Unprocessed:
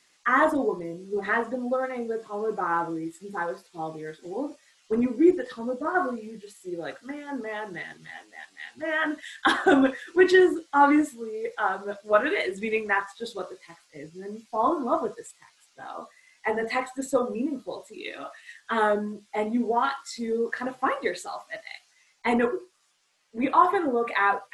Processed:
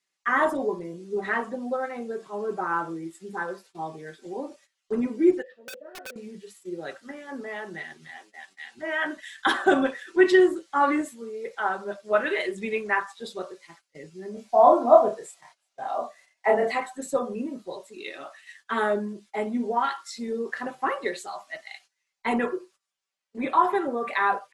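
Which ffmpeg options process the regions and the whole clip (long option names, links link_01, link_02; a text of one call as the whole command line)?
ffmpeg -i in.wav -filter_complex "[0:a]asettb=1/sr,asplit=3[link_01][link_02][link_03];[link_01]atrim=end=5.424[link_04];[link_02]atrim=start=5.42:end=6.16,asetpts=PTS-STARTPTS,afade=type=in:duration=0.004:curve=qsin,afade=type=out:start_time=0.736:duration=0.004:curve=qsin,asplit=3[link_05][link_06][link_07];[link_05]bandpass=frequency=530:width_type=q:width=8,volume=0dB[link_08];[link_06]bandpass=frequency=1840:width_type=q:width=8,volume=-6dB[link_09];[link_07]bandpass=frequency=2480:width_type=q:width=8,volume=-9dB[link_10];[link_08][link_09][link_10]amix=inputs=3:normalize=0,aeval=exprs='(mod(42.2*val(0)+1,2)-1)/42.2':channel_layout=same[link_11];[link_03]atrim=start=6.156[link_12];[link_04][link_11]acrossfade=duration=0.004:curve1=hsin:curve2=qsin[link_13];[link_13][link_12]acrossfade=duration=0.004:curve1=qsin:curve2=hsin,asettb=1/sr,asplit=3[link_14][link_15][link_16];[link_14]atrim=end=14.344[link_17];[link_15]atrim=start=14.34:end=16.72,asetpts=PTS-STARTPTS,afade=type=in:duration=0.004:curve=qsin,afade=type=out:start_time=2.376:duration=0.004:curve=qsin,equalizer=frequency=660:width_type=o:width=0.58:gain=14.5,asplit=2[link_18][link_19];[link_19]adelay=29,volume=-3dB[link_20];[link_18][link_20]amix=inputs=2:normalize=0,atrim=end_sample=104958[link_21];[link_16]atrim=start=16.716[link_22];[link_17][link_21]acrossfade=duration=0.004:curve1=hsin:curve2=qsin[link_23];[link_23][link_22]acrossfade=duration=0.004:curve1=qsin:curve2=hsin,agate=range=-17dB:threshold=-51dB:ratio=16:detection=peak,lowshelf=frequency=140:gain=-3.5,aecho=1:1:5.2:0.36,volume=-1.5dB" out.wav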